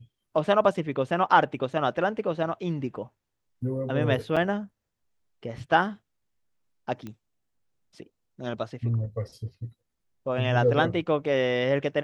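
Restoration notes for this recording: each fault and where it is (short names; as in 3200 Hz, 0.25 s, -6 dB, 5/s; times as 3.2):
4.36–4.37 gap 5.9 ms
7.07 pop -25 dBFS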